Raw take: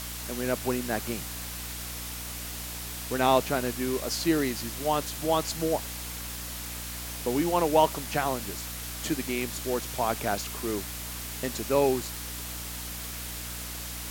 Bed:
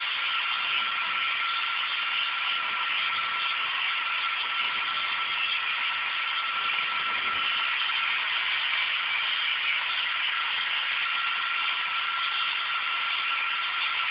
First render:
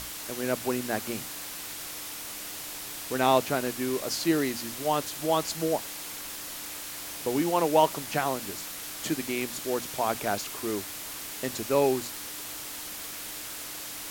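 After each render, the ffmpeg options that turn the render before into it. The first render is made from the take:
-af "bandreject=f=60:t=h:w=6,bandreject=f=120:t=h:w=6,bandreject=f=180:t=h:w=6,bandreject=f=240:t=h:w=6"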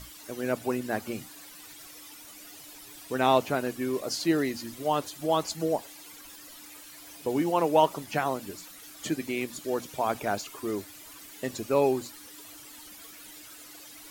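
-af "afftdn=nr=13:nf=-39"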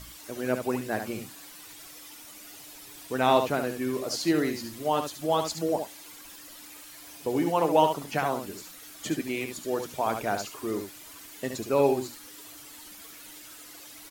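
-af "aecho=1:1:71:0.447"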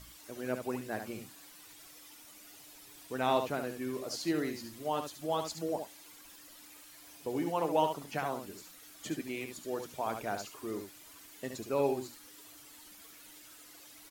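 -af "volume=-7.5dB"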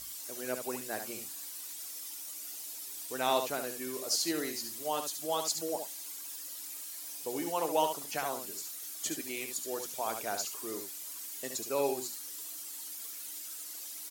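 -af "bass=f=250:g=-10,treble=f=4k:g=13"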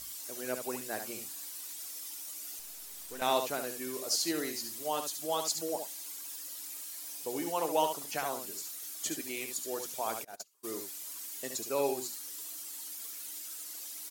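-filter_complex "[0:a]asettb=1/sr,asplit=3[a][b][c];[a]atrim=end=2.594[d];[b]atrim=start=2.59:end=3.22,asetpts=PTS-STARTPTS,afade=t=in:d=0.004:c=qsin,afade=t=out:st=0.626:d=0.004:c=qsin,aeval=exprs='(tanh(79.4*val(0)+0.6)-tanh(0.6))/79.4':c=same[e];[c]atrim=start=3.216[f];[d][e]acrossfade=d=0.004:c1=hsin:c2=qsin[g];[g][f]acrossfade=d=0.004:c1=qsin:c2=hsin,asplit=3[h][i][j];[h]afade=t=out:st=10.23:d=0.02[k];[i]agate=range=-31dB:threshold=-33dB:ratio=16:release=100:detection=peak,afade=t=in:st=10.23:d=0.02,afade=t=out:st=10.63:d=0.02[l];[j]afade=t=in:st=10.63:d=0.02[m];[k][l][m]amix=inputs=3:normalize=0"

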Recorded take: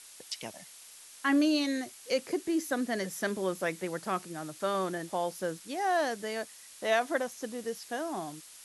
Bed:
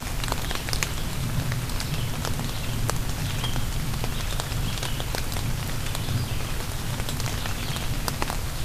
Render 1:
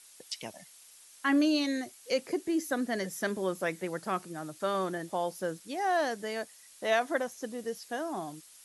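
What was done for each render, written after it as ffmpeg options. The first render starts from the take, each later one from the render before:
-af "afftdn=nr=6:nf=-52"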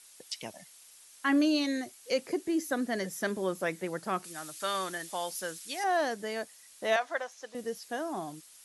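-filter_complex "[0:a]asettb=1/sr,asplit=3[a][b][c];[a]atrim=end=4.244[d];[b]atrim=start=4.24:end=5.84,asetpts=PTS-STARTPTS,afade=t=in:d=0.004:c=qsin,afade=t=out:st=1.596:d=0.004:c=qsin,tiltshelf=f=1.1k:g=-9[e];[c]atrim=start=5.836[f];[d][e]acrossfade=d=0.004:c1=hsin:c2=qsin[g];[g][f]acrossfade=d=0.004:c1=qsin:c2=hsin,asettb=1/sr,asplit=3[h][i][j];[h]atrim=end=6.964[k];[i]atrim=start=6.96:end=7.55,asetpts=PTS-STARTPTS,afade=t=in:d=0.004:c=qsin,afade=t=out:st=0.586:d=0.004:c=qsin,acrossover=split=520 7200:gain=0.0631 1 0.158[l][m][n];[l][m][n]amix=inputs=3:normalize=0[o];[j]atrim=start=7.546[p];[k][o]acrossfade=d=0.004:c1=hsin:c2=qsin[q];[q][p]acrossfade=d=0.004:c1=qsin:c2=hsin"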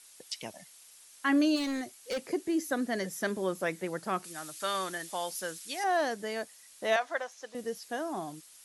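-filter_complex "[0:a]asplit=3[a][b][c];[a]afade=t=out:st=1.55:d=0.02[d];[b]volume=29.5dB,asoftclip=hard,volume=-29.5dB,afade=t=in:st=1.55:d=0.02,afade=t=out:st=2.19:d=0.02[e];[c]afade=t=in:st=2.19:d=0.02[f];[d][e][f]amix=inputs=3:normalize=0"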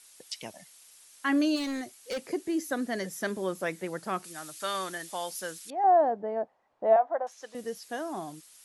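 -filter_complex "[0:a]asettb=1/sr,asplit=3[a][b][c];[a]atrim=end=5.704[d];[b]atrim=start=5.7:end=7.27,asetpts=PTS-STARTPTS,afade=t=in:d=0.004:c=qsin,afade=t=out:st=1.566:d=0.004:c=qsin,lowpass=f=780:t=q:w=2.7[e];[c]atrim=start=7.266[f];[d][e]acrossfade=d=0.004:c1=hsin:c2=qsin[g];[g][f]acrossfade=d=0.004:c1=qsin:c2=hsin"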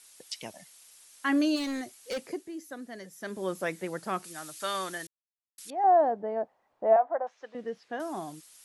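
-filter_complex "[0:a]asettb=1/sr,asplit=3[a][b][c];[a]atrim=end=6.844[d];[b]atrim=start=6.84:end=8,asetpts=PTS-STARTPTS,afade=t=in:d=0.004:c=qsin,afade=t=out:st=1.156:d=0.004:c=qsin,highpass=100,lowpass=2.5k[e];[c]atrim=start=7.996[f];[d][e]acrossfade=d=0.004:c1=hsin:c2=qsin[g];[g][f]acrossfade=d=0.004:c1=qsin:c2=hsin,asplit=5[h][i][j][k][l];[h]atrim=end=2.5,asetpts=PTS-STARTPTS,afade=t=out:st=2.17:d=0.33:silence=0.298538[m];[i]atrim=start=2.5:end=3.18,asetpts=PTS-STARTPTS,volume=-10.5dB[n];[j]atrim=start=3.18:end=5.07,asetpts=PTS-STARTPTS,afade=t=in:d=0.33:silence=0.298538,afade=t=out:st=1.886:d=0.004:c=hsin[o];[k]atrim=start=5.07:end=5.58,asetpts=PTS-STARTPTS,volume=0[p];[l]atrim=start=5.58,asetpts=PTS-STARTPTS,afade=t=in:d=0.004:c=hsin[q];[m][n][o][p][q]concat=n=5:v=0:a=1"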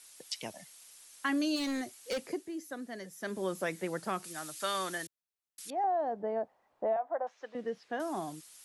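-filter_complex "[0:a]acrossover=split=140|3000[a][b][c];[b]acompressor=threshold=-29dB:ratio=6[d];[a][d][c]amix=inputs=3:normalize=0"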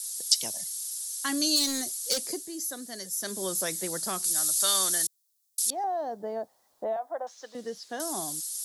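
-af "aexciter=amount=5.5:drive=7.8:freq=3.7k"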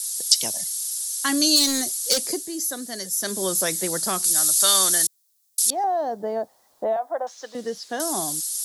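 -af "volume=7dB,alimiter=limit=-1dB:level=0:latency=1"

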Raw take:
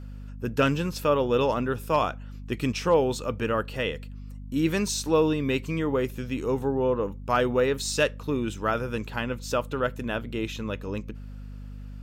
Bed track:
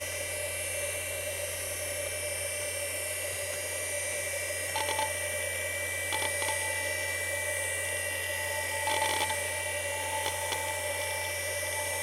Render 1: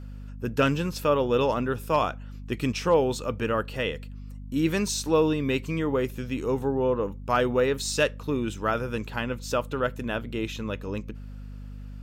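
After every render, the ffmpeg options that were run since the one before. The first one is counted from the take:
-af anull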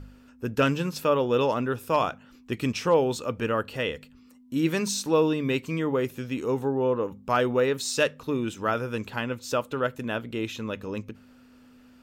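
-af "bandreject=f=50:t=h:w=4,bandreject=f=100:t=h:w=4,bandreject=f=150:t=h:w=4,bandreject=f=200:t=h:w=4"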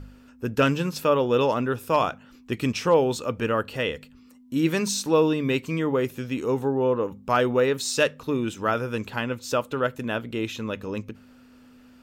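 -af "volume=2dB"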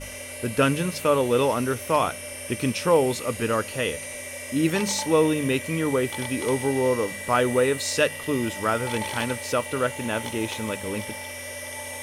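-filter_complex "[1:a]volume=-2.5dB[a];[0:a][a]amix=inputs=2:normalize=0"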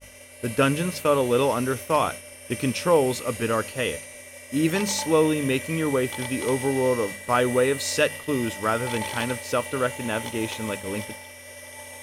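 -af "agate=range=-33dB:threshold=-29dB:ratio=3:detection=peak,equalizer=f=14k:w=7.4:g=7"

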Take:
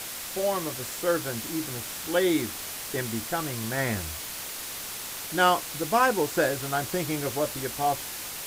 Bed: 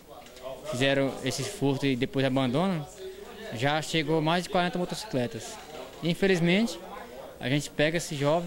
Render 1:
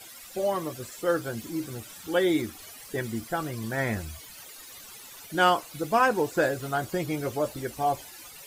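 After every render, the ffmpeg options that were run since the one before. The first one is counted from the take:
-af "afftdn=nr=15:nf=-37"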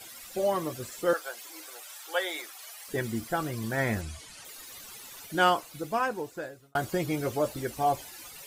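-filter_complex "[0:a]asettb=1/sr,asplit=3[a][b][c];[a]atrim=end=1.134[d];[b]atrim=start=1.13:end=2.88,asetpts=PTS-STARTPTS,afade=t=in:d=0.004:c=qsin,afade=t=out:st=1.746:d=0.004:c=qsin,highpass=f=600:w=0.5412,highpass=f=600:w=1.3066[e];[c]atrim=start=2.876[f];[d][e]acrossfade=d=0.004:c1=hsin:c2=qsin[g];[g][f]acrossfade=d=0.004:c1=qsin:c2=hsin,asettb=1/sr,asplit=3[h][i][j];[h]atrim=end=4.014[k];[i]atrim=start=4.01:end=4.45,asetpts=PTS-STARTPTS,afade=t=in:d=0.004:c=qsin,afade=t=out:st=0.436:d=0.004:c=qsin,lowpass=f=10k:w=0.5412,lowpass=f=10k:w=1.3066[l];[j]atrim=start=4.446[m];[k][l]acrossfade=d=0.004:c1=hsin:c2=qsin[n];[n][m]acrossfade=d=0.004:c1=qsin:c2=hsin,asplit=2[o][p];[o]atrim=end=6.75,asetpts=PTS-STARTPTS,afade=t=out:st=5.19:d=1.56[q];[p]atrim=start=6.75,asetpts=PTS-STARTPTS,afade=t=in:d=0.004:c=hsin[r];[q][r]concat=n=2:v=0:a=1"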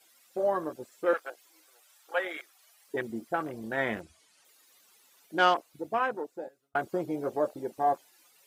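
-af "highpass=260,afwtdn=0.0158"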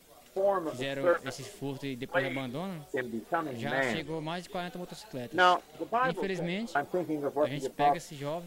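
-filter_complex "[1:a]volume=-10.5dB[a];[0:a][a]amix=inputs=2:normalize=0"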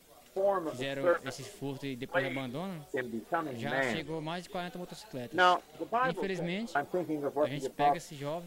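-af "volume=-1.5dB"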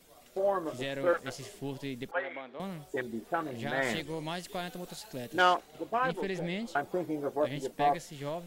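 -filter_complex "[0:a]asettb=1/sr,asplit=3[a][b][c];[a]atrim=end=2.114[d];[b]atrim=start=2.11:end=2.6,asetpts=PTS-STARTPTS,afade=t=in:d=0.004:c=qsin,afade=t=out:st=0.486:d=0.004:c=qsin,highpass=530,lowpass=2k[e];[c]atrim=start=2.596[f];[d][e]acrossfade=d=0.004:c1=hsin:c2=qsin[g];[g][f]acrossfade=d=0.004:c1=qsin:c2=hsin,asettb=1/sr,asplit=3[h][i][j];[h]atrim=end=3.854[k];[i]atrim=start=3.85:end=5.42,asetpts=PTS-STARTPTS,afade=t=in:d=0.004:c=qsin,afade=t=out:st=1.566:d=0.004:c=qsin,highshelf=f=4.6k:g=7.5[l];[j]atrim=start=5.416[m];[k][l]acrossfade=d=0.004:c1=hsin:c2=qsin[n];[n][m]acrossfade=d=0.004:c1=qsin:c2=hsin"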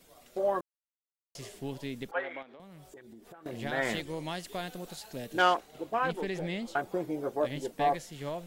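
-filter_complex "[0:a]asettb=1/sr,asplit=3[a][b][c];[a]atrim=end=2.424[d];[b]atrim=start=2.42:end=3.46,asetpts=PTS-STARTPTS,afade=t=in:d=0.004:c=qsin,afade=t=out:st=1.036:d=0.004:c=qsin,acompressor=threshold=-47dB:ratio=12:attack=3.2:release=140:knee=1:detection=peak[e];[c]atrim=start=3.456[f];[d][e]acrossfade=d=0.004:c1=hsin:c2=qsin[g];[g][f]acrossfade=d=0.004:c1=qsin:c2=hsin,asplit=3[h][i][j];[h]atrim=end=0.61,asetpts=PTS-STARTPTS,afade=t=out:st=0.606:d=0.004:c=hsin[k];[i]atrim=start=0.61:end=1.35,asetpts=PTS-STARTPTS,volume=0[l];[j]atrim=start=1.35,asetpts=PTS-STARTPTS,afade=t=in:d=0.004:c=hsin[m];[k][l][m]concat=n=3:v=0:a=1"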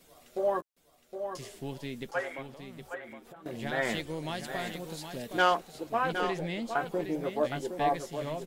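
-filter_complex "[0:a]asplit=2[a][b];[b]adelay=13,volume=-12.5dB[c];[a][c]amix=inputs=2:normalize=0,asplit=2[d][e];[e]aecho=0:1:765:0.398[f];[d][f]amix=inputs=2:normalize=0"

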